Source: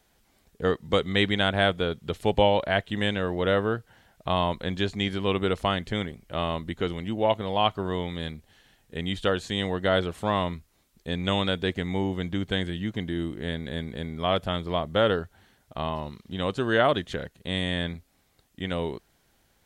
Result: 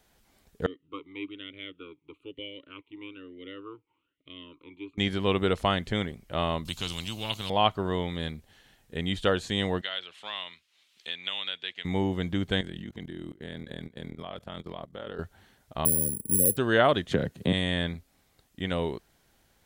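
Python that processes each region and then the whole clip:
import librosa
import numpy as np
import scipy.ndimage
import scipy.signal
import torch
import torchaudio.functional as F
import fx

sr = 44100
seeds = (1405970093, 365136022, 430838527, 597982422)

y = fx.chain(x, sr, fx.fixed_phaser(hz=1100.0, stages=8),
    fx.vowel_sweep(vowels='i-u', hz=1.1), at=(0.66, 4.98))
y = fx.chain(y, sr, fx.curve_eq(hz=(150.0, 360.0, 650.0, 1100.0, 1900.0, 2800.0, 8500.0), db=(0, -16, -21, -12, -23, 5, -3)),
    fx.spectral_comp(ratio=2.0), at=(6.65, 7.5))
y = fx.chain(y, sr, fx.bandpass_q(hz=3000.0, q=2.0),
    fx.band_squash(depth_pct=70), at=(9.81, 11.85))
y = fx.chain(y, sr, fx.highpass(hz=96.0, slope=12),
    fx.level_steps(step_db=18),
    fx.ring_mod(carrier_hz=21.0), at=(12.61, 15.19))
y = fx.chain(y, sr, fx.resample_bad(factor=4, down='filtered', up='zero_stuff'),
    fx.brickwall_bandstop(low_hz=570.0, high_hz=7800.0),
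    fx.band_squash(depth_pct=70), at=(15.85, 16.57))
y = fx.chain(y, sr, fx.highpass(hz=120.0, slope=12),
    fx.low_shelf(hz=480.0, db=11.5),
    fx.band_squash(depth_pct=70), at=(17.11, 17.53))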